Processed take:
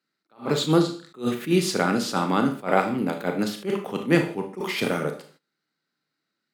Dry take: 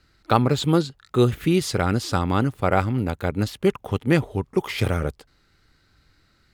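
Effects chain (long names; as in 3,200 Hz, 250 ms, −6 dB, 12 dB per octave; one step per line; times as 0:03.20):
Butterworth high-pass 160 Hz 36 dB per octave
four-comb reverb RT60 0.44 s, combs from 26 ms, DRR 5 dB
noise gate −53 dBFS, range −18 dB
level that may rise only so fast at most 240 dB per second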